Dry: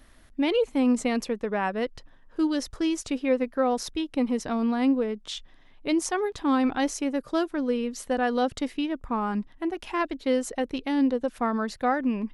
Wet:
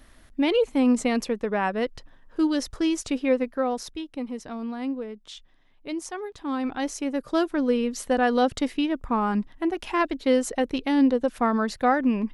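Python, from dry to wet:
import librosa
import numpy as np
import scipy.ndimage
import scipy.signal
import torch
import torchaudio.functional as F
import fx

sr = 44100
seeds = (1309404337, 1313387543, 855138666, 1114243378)

y = fx.gain(x, sr, db=fx.line((3.28, 2.0), (4.23, -7.0), (6.36, -7.0), (7.5, 3.5)))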